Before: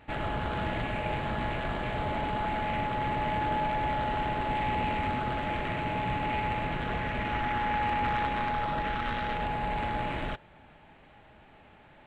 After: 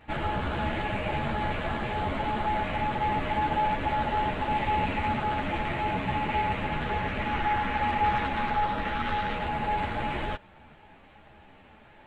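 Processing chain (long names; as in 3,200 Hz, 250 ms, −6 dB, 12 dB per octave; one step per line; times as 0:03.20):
string-ensemble chorus
level +5 dB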